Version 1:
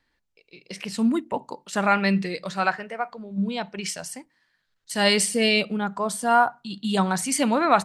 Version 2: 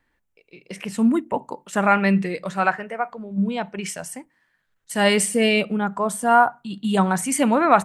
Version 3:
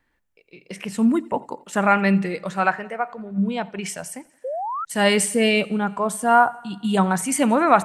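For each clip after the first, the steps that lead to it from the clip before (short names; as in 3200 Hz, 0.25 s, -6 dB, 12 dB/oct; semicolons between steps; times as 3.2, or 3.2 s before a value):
bell 4500 Hz -12 dB 0.89 oct; gain +3.5 dB
thinning echo 87 ms, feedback 63%, high-pass 180 Hz, level -23.5 dB; painted sound rise, 4.44–4.85, 490–1400 Hz -27 dBFS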